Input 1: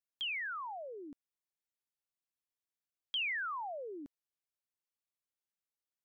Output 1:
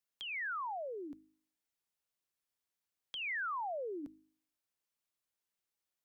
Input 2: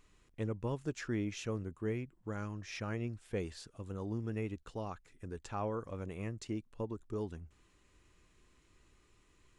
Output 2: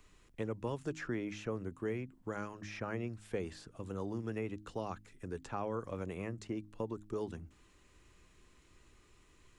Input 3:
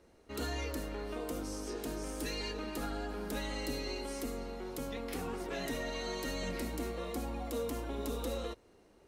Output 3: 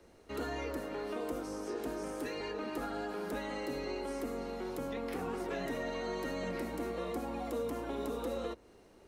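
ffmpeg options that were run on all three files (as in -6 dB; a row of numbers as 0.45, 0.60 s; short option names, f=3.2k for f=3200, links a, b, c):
-filter_complex "[0:a]acrossover=split=110|380|2100[a][b][c][d];[a]acompressor=threshold=-57dB:ratio=4[e];[b]acompressor=threshold=-43dB:ratio=4[f];[c]acompressor=threshold=-40dB:ratio=4[g];[d]acompressor=threshold=-58dB:ratio=4[h];[e][f][g][h]amix=inputs=4:normalize=0,bandreject=f=52.28:t=h:w=4,bandreject=f=104.56:t=h:w=4,bandreject=f=156.84:t=h:w=4,bandreject=f=209.12:t=h:w=4,bandreject=f=261.4:t=h:w=4,bandreject=f=313.68:t=h:w=4,volume=3.5dB"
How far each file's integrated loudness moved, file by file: -1.5, -0.5, +0.5 LU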